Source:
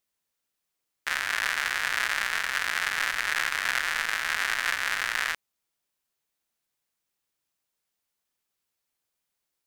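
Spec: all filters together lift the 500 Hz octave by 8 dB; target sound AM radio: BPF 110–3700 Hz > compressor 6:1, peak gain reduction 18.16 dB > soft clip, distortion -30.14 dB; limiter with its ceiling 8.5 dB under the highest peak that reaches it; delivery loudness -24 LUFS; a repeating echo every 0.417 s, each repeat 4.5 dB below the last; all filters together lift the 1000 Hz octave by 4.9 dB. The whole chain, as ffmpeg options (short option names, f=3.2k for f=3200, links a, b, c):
-af "equalizer=f=500:t=o:g=8.5,equalizer=f=1k:t=o:g=5,alimiter=limit=-15.5dB:level=0:latency=1,highpass=110,lowpass=3.7k,aecho=1:1:417|834|1251|1668|2085|2502|2919|3336|3753:0.596|0.357|0.214|0.129|0.0772|0.0463|0.0278|0.0167|0.01,acompressor=threshold=-43dB:ratio=6,asoftclip=threshold=-25.5dB,volume=22dB"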